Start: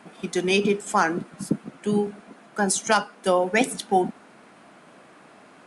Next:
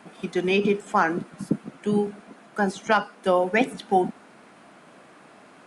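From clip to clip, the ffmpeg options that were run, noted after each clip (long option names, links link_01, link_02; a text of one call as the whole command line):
ffmpeg -i in.wav -filter_complex "[0:a]acrossover=split=3500[link_01][link_02];[link_02]acompressor=threshold=-47dB:ratio=4:attack=1:release=60[link_03];[link_01][link_03]amix=inputs=2:normalize=0" out.wav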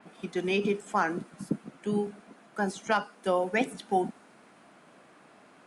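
ffmpeg -i in.wav -af "adynamicequalizer=threshold=0.00891:dfrequency=5100:dqfactor=0.7:tfrequency=5100:tqfactor=0.7:attack=5:release=100:ratio=0.375:range=2.5:mode=boostabove:tftype=highshelf,volume=-6dB" out.wav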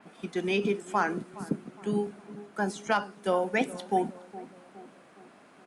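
ffmpeg -i in.wav -filter_complex "[0:a]asplit=2[link_01][link_02];[link_02]adelay=415,lowpass=frequency=990:poles=1,volume=-15.5dB,asplit=2[link_03][link_04];[link_04]adelay=415,lowpass=frequency=990:poles=1,volume=0.54,asplit=2[link_05][link_06];[link_06]adelay=415,lowpass=frequency=990:poles=1,volume=0.54,asplit=2[link_07][link_08];[link_08]adelay=415,lowpass=frequency=990:poles=1,volume=0.54,asplit=2[link_09][link_10];[link_10]adelay=415,lowpass=frequency=990:poles=1,volume=0.54[link_11];[link_01][link_03][link_05][link_07][link_09][link_11]amix=inputs=6:normalize=0" out.wav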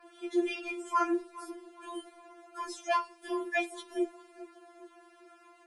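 ffmpeg -i in.wav -af "afftfilt=real='re*4*eq(mod(b,16),0)':imag='im*4*eq(mod(b,16),0)':win_size=2048:overlap=0.75" out.wav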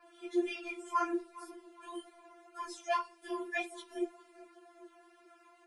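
ffmpeg -i in.wav -af "flanger=delay=6.4:depth=4.1:regen=-38:speed=1.9:shape=triangular" out.wav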